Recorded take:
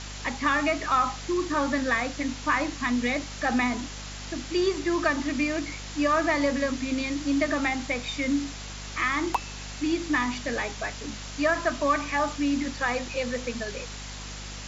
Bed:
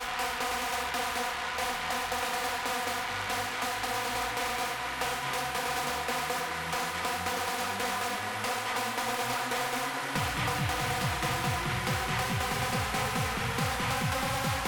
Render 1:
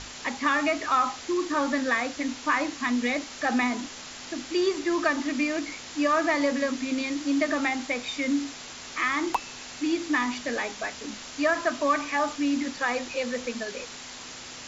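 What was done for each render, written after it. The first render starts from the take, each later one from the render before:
mains-hum notches 50/100/150/200 Hz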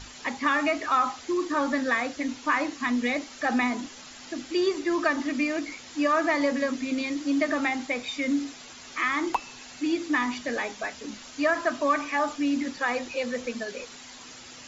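broadband denoise 8 dB, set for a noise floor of −42 dBFS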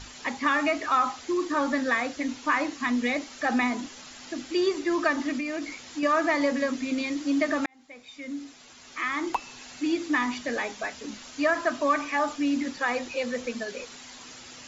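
0:05.37–0:06.03: downward compressor, threshold −27 dBFS
0:07.66–0:09.66: fade in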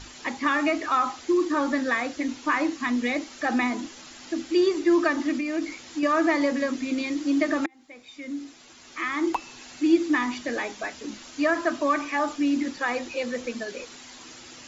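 parametric band 330 Hz +9 dB 0.23 octaves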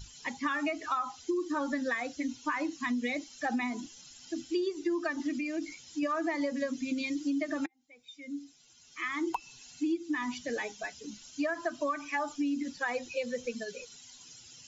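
spectral dynamics exaggerated over time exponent 1.5
downward compressor 10 to 1, threshold −28 dBFS, peak gain reduction 14 dB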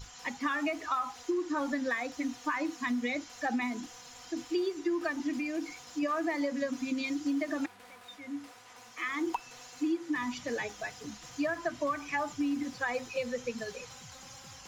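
mix in bed −22.5 dB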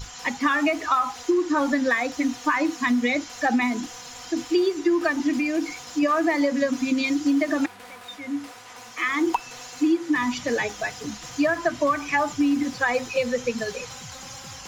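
level +10 dB

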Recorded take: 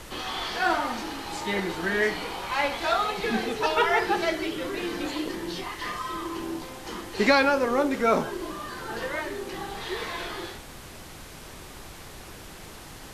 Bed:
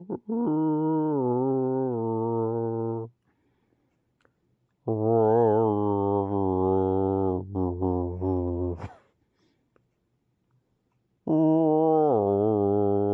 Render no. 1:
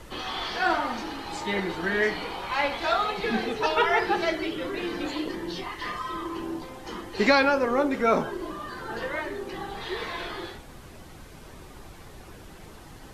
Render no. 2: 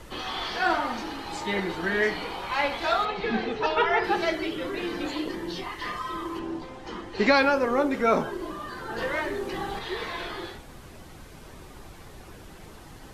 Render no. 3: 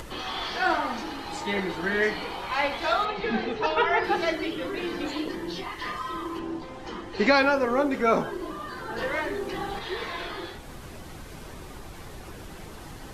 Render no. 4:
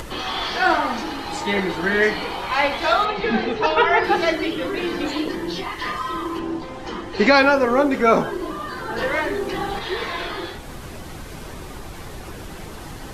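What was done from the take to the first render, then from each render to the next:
broadband denoise 8 dB, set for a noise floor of −44 dBFS
0:03.05–0:04.04: high-frequency loss of the air 110 metres; 0:06.39–0:07.35: high-frequency loss of the air 64 metres; 0:08.98–0:09.79: leveller curve on the samples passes 1
upward compression, threshold −34 dBFS
level +6.5 dB; brickwall limiter −3 dBFS, peak gain reduction 1.5 dB

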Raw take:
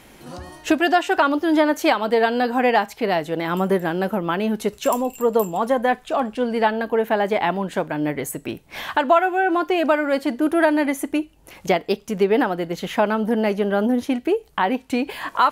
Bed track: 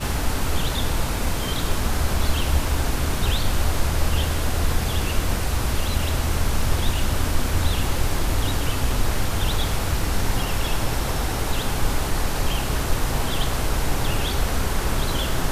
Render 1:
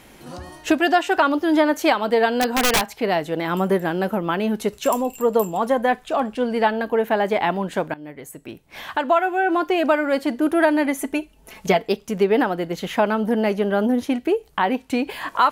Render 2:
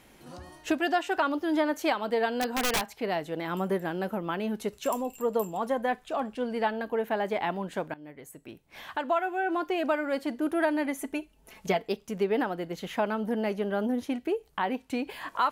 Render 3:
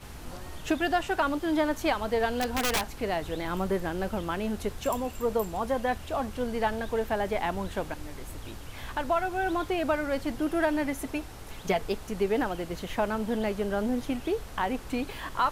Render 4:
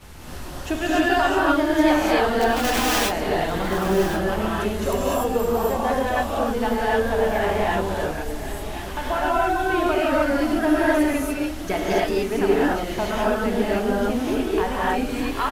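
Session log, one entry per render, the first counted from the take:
0:02.41–0:02.95: wrap-around overflow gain 12 dB; 0:07.94–0:09.55: fade in, from −17.5 dB; 0:10.98–0:11.88: comb filter 4.6 ms
level −9 dB
mix in bed track −19.5 dB
single-tap delay 1,077 ms −12.5 dB; reverb whose tail is shaped and stops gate 320 ms rising, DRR −7 dB

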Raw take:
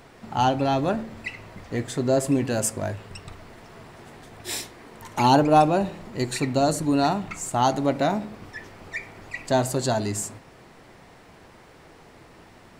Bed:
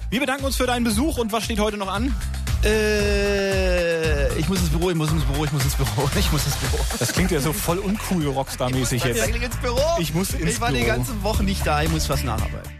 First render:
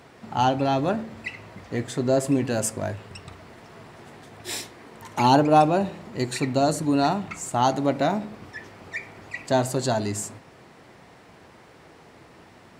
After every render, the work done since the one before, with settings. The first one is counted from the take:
high-pass filter 72 Hz
high-shelf EQ 9,800 Hz −4.5 dB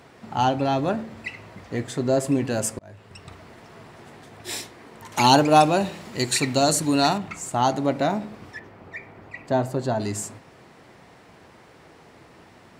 0:02.79–0:03.32: fade in linear
0:05.12–0:07.18: high-shelf EQ 2,100 Hz +11 dB
0:08.59–0:10.00: parametric band 8,000 Hz −13.5 dB 2.6 octaves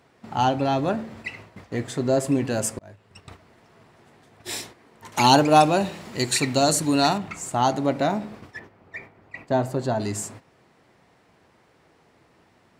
noise gate −42 dBFS, range −9 dB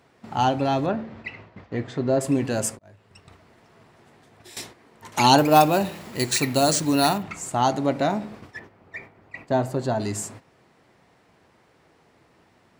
0:00.86–0:02.21: high-frequency loss of the air 170 metres
0:02.75–0:04.57: downward compressor 5 to 1, threshold −44 dBFS
0:05.38–0:07.23: bad sample-rate conversion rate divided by 3×, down none, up hold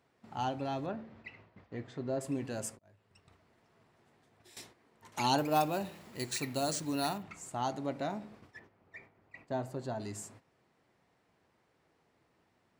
level −13.5 dB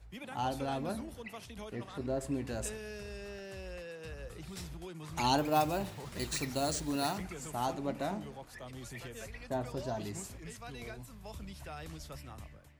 mix in bed −24.5 dB

